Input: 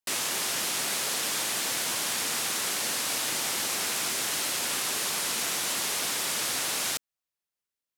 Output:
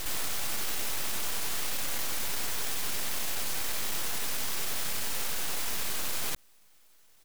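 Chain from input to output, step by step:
Bessel high-pass filter 1,700 Hz, order 4
full-wave rectification
tempo change 1.1×
on a send: backwards echo 105 ms −9 dB
on the sum: envelope flattener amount 50%

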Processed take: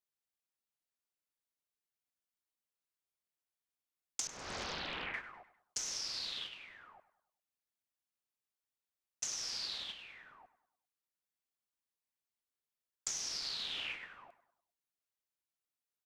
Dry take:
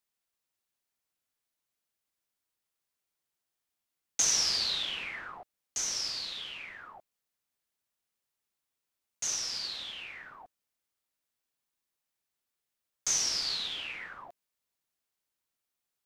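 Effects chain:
noise gate −39 dBFS, range −15 dB
0:04.27–0:05.14: low-pass filter 1,500 Hz 12 dB per octave
downward compressor 12 to 1, threshold −42 dBFS, peak gain reduction 19 dB
repeating echo 100 ms, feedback 45%, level −16 dB
highs frequency-modulated by the lows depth 0.84 ms
level +5.5 dB

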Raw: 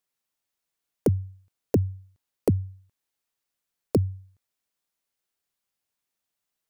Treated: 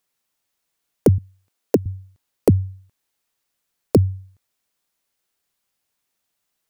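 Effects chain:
0:01.18–0:01.86: high-pass filter 220 Hz 12 dB per octave
level +7.5 dB

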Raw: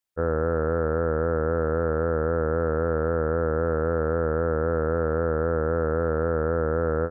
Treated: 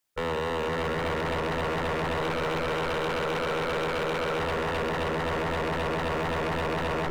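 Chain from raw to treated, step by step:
sub-octave generator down 1 octave, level −5 dB
0:02.18–0:04.40: low-shelf EQ 290 Hz −11 dB
brickwall limiter −20 dBFS, peak gain reduction 7.5 dB
low-shelf EQ 90 Hz −6.5 dB
feedback delay with all-pass diffusion 544 ms, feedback 48%, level −6 dB
convolution reverb RT60 1.3 s, pre-delay 7 ms, DRR 11 dB
wave folding −30.5 dBFS
level +7 dB

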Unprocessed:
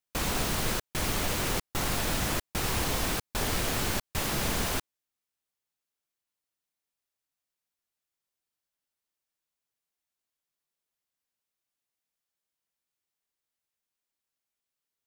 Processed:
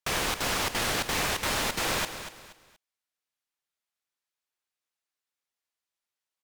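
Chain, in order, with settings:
low-pass filter 2,600 Hz 6 dB per octave
low-shelf EQ 170 Hz −11 dB
on a send: repeating echo 556 ms, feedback 31%, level −11 dB
on the sum: wrong playback speed 33 rpm record played at 78 rpm
level +5.5 dB

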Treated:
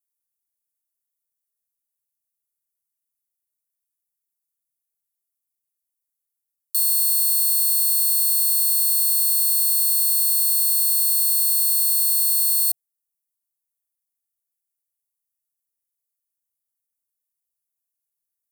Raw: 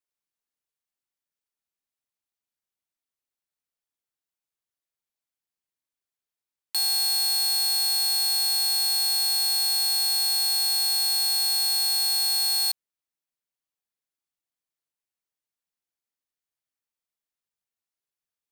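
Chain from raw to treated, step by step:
drawn EQ curve 120 Hz 0 dB, 220 Hz −11 dB, 700 Hz −5 dB, 1,100 Hz −26 dB, 1,700 Hz −15 dB, 2,500 Hz −16 dB, 11,000 Hz +12 dB
level −1.5 dB

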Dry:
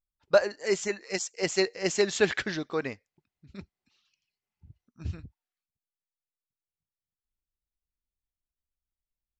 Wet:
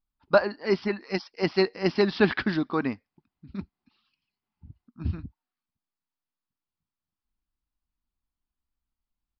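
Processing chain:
downsampling to 11,025 Hz
octave-band graphic EQ 125/250/500/1,000/2,000/4,000 Hz −3/+8/−10/+5/−6/−6 dB
level +6 dB

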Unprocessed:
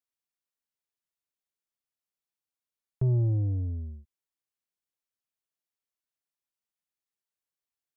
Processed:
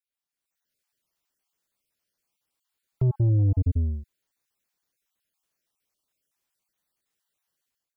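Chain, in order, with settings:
time-frequency cells dropped at random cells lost 28%
brickwall limiter −30 dBFS, peak gain reduction 8.5 dB
automatic gain control gain up to 12 dB

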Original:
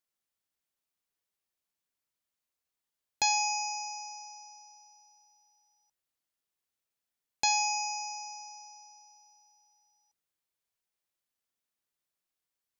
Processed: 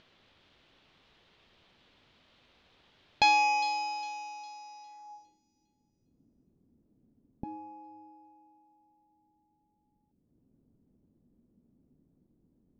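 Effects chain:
running median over 5 samples
in parallel at +0.5 dB: upward compression, threshold −44 dBFS
on the sum: low-pass filter sweep 3,500 Hz → 250 Hz, 0:04.83–0:05.40
tilt shelving filter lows +5 dB, about 790 Hz
delay with a high-pass on its return 406 ms, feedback 34%, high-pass 5,300 Hz, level −6 dB

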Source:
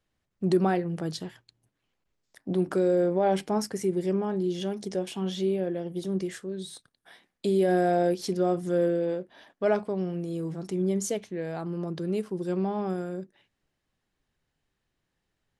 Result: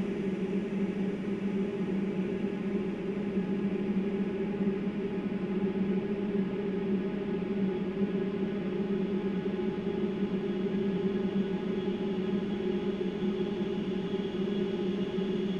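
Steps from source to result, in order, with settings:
auto-filter band-pass square 9.6 Hz 250–2,400 Hz
extreme stretch with random phases 47×, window 1.00 s, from 0:04.06
level +5.5 dB

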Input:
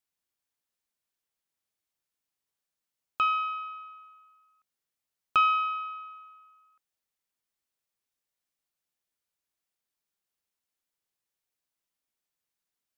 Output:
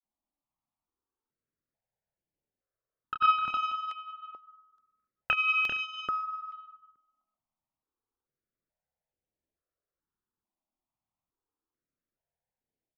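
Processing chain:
low-pass that shuts in the quiet parts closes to 910 Hz, open at −32.5 dBFS
multi-tap delay 246/285/386/511 ms −16.5/−18/−5/−14 dB
granular cloud 100 ms, pitch spread up and down by 0 semitones
double-tracking delay 28 ms −6 dB
step-sequenced phaser 2.3 Hz 450–4,400 Hz
level +7 dB

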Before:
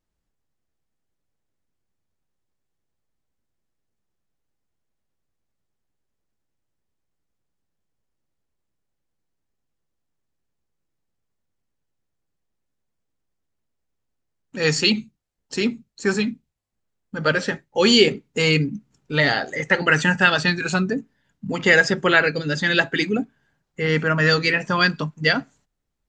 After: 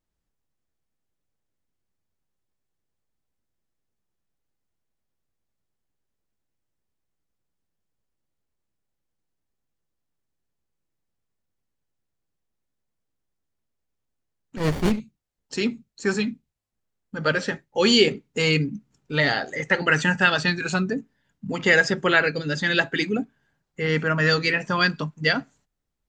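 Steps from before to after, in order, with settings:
0:14.57–0:15.00: windowed peak hold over 33 samples
level −2.5 dB

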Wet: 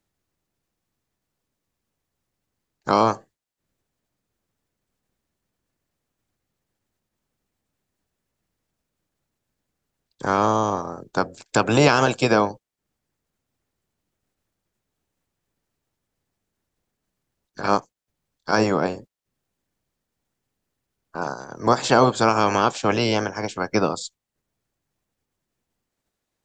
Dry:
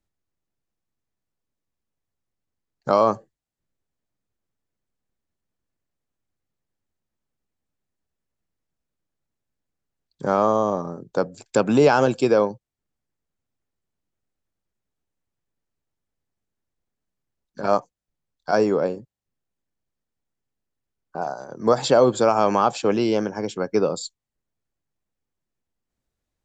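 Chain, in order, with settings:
ceiling on every frequency bin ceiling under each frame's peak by 16 dB

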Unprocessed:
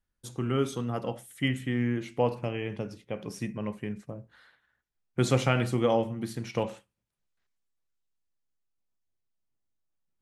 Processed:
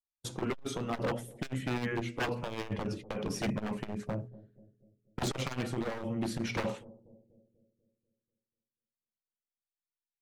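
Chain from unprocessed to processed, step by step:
spectral magnitudes quantised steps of 15 dB
noise gate −48 dBFS, range −35 dB
high-shelf EQ 7,000 Hz −8.5 dB
mains-hum notches 60/120/180/240/300/360/420 Hz
speech leveller within 5 dB 0.5 s
wave folding −28 dBFS
on a send: bucket-brigade delay 244 ms, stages 1,024, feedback 50%, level −21 dB
on the sum: saturating transformer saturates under 120 Hz
level +3.5 dB

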